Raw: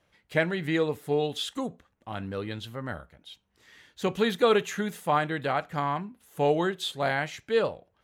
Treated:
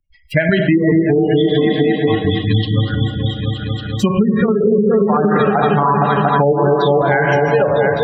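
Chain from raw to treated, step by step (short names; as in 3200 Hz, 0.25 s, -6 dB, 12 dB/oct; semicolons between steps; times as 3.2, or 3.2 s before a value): per-bin expansion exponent 2; step gate ".xx..x.x.xxxx.xx" 154 bpm -12 dB; resonator 110 Hz, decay 0.89 s, harmonics all, mix 50%; repeats that get brighter 0.231 s, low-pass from 400 Hz, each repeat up 1 oct, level -3 dB; Schroeder reverb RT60 1.6 s, combs from 29 ms, DRR 5.5 dB; treble ducked by the level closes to 500 Hz, closed at -29 dBFS; compressor 20:1, threshold -37 dBFS, peak gain reduction 12 dB; 2.3–4.61 bell 500 Hz -8.5 dB 0.93 oct; spectral gate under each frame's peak -30 dB strong; maximiser +34 dB; three-band squash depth 70%; gain -4 dB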